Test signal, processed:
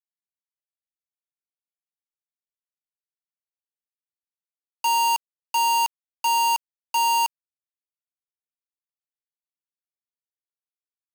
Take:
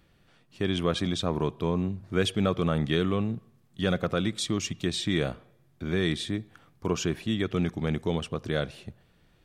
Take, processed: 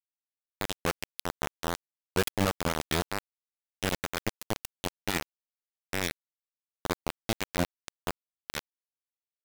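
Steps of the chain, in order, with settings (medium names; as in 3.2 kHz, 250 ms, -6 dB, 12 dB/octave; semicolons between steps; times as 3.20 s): expander on every frequency bin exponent 2; upward compressor, threshold -30 dBFS; bit crusher 4-bit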